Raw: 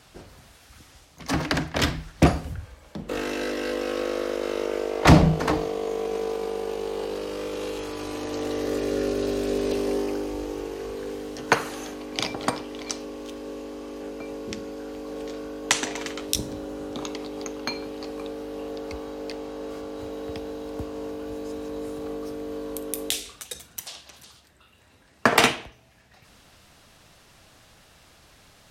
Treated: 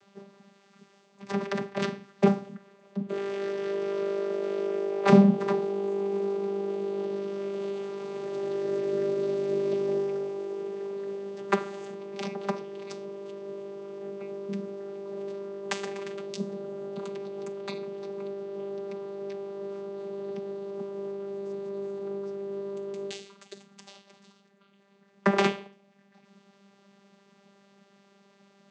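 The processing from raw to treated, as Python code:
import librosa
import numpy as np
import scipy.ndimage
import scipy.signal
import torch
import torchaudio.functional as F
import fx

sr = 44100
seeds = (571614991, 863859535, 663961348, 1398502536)

y = fx.vocoder(x, sr, bands=16, carrier='saw', carrier_hz=198.0)
y = F.gain(torch.from_numpy(y), -1.5).numpy()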